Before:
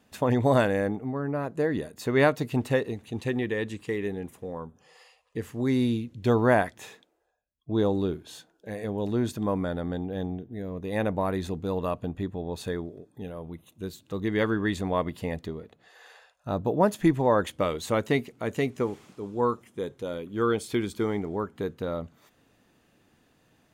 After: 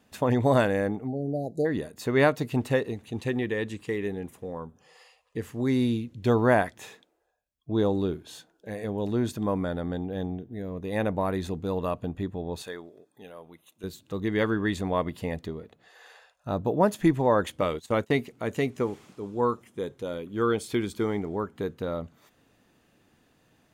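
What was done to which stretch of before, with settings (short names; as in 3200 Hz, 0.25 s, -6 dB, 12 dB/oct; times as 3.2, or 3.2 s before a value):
1.07–1.66 spectral delete 830–3800 Hz
12.62–13.84 HPF 840 Hz 6 dB/oct
17.61–18.15 gate -36 dBFS, range -18 dB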